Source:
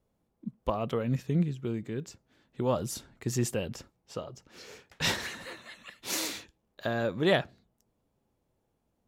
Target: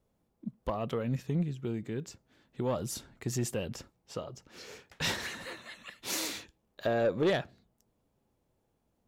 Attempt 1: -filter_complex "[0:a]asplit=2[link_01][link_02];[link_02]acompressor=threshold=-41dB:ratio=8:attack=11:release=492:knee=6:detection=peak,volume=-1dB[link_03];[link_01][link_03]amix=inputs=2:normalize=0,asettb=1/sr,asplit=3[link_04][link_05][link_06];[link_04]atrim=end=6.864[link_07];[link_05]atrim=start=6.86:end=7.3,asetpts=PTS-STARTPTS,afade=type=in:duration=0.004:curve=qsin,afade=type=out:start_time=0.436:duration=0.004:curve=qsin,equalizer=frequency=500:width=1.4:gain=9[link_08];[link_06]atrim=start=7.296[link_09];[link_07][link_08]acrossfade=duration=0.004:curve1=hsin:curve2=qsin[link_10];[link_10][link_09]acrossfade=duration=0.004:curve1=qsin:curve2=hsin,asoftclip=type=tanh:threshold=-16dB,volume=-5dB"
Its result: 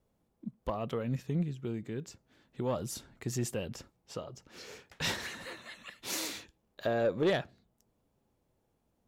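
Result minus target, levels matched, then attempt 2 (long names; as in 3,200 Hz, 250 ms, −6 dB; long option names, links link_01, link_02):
downward compressor: peak gain reduction +8.5 dB
-filter_complex "[0:a]asplit=2[link_01][link_02];[link_02]acompressor=threshold=-31.5dB:ratio=8:attack=11:release=492:knee=6:detection=peak,volume=-1dB[link_03];[link_01][link_03]amix=inputs=2:normalize=0,asettb=1/sr,asplit=3[link_04][link_05][link_06];[link_04]atrim=end=6.864[link_07];[link_05]atrim=start=6.86:end=7.3,asetpts=PTS-STARTPTS,afade=type=in:duration=0.004:curve=qsin,afade=type=out:start_time=0.436:duration=0.004:curve=qsin,equalizer=frequency=500:width=1.4:gain=9[link_08];[link_06]atrim=start=7.296[link_09];[link_07][link_08]acrossfade=duration=0.004:curve1=hsin:curve2=qsin[link_10];[link_10][link_09]acrossfade=duration=0.004:curve1=qsin:curve2=hsin,asoftclip=type=tanh:threshold=-16dB,volume=-5dB"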